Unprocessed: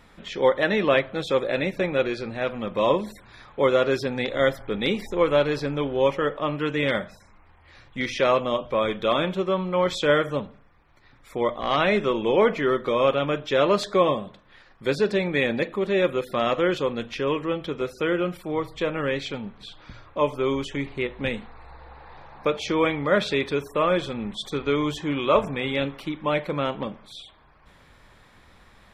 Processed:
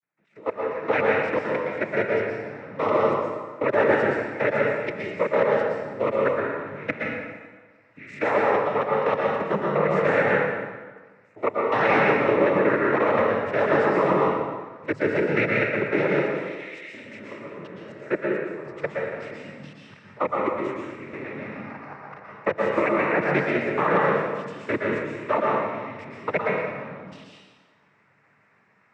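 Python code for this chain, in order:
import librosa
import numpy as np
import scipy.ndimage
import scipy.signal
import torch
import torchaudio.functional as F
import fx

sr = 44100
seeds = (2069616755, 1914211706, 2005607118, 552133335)

y = fx.fade_in_head(x, sr, length_s=0.96)
y = fx.brickwall_highpass(y, sr, low_hz=2000.0, at=(16.28, 16.93))
y = fx.level_steps(y, sr, step_db=22)
y = fx.noise_vocoder(y, sr, seeds[0], bands=12)
y = fx.high_shelf_res(y, sr, hz=2700.0, db=-7.0, q=3.0)
y = fx.rev_plate(y, sr, seeds[1], rt60_s=1.4, hf_ratio=0.8, predelay_ms=105, drr_db=-3.0)
y = fx.band_squash(y, sr, depth_pct=40, at=(21.13, 22.99))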